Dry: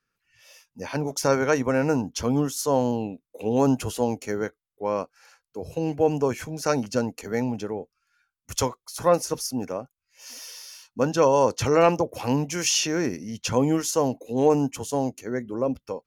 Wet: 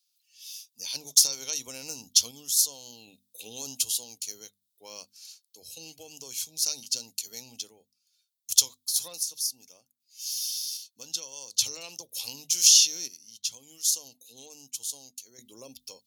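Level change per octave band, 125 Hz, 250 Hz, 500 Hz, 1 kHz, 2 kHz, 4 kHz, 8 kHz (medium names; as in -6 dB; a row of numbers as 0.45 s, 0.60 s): under -25 dB, -28.0 dB, -28.0 dB, -28.0 dB, -13.5 dB, +7.0 dB, +8.0 dB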